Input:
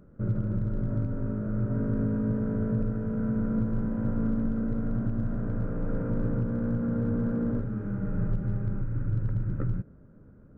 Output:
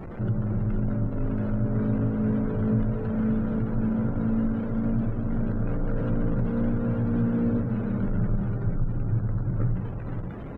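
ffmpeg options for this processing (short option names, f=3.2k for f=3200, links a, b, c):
-af "aeval=exprs='val(0)+0.5*0.0251*sgn(val(0))':c=same,aecho=1:1:480:0.473,afftdn=nr=29:nf=-45"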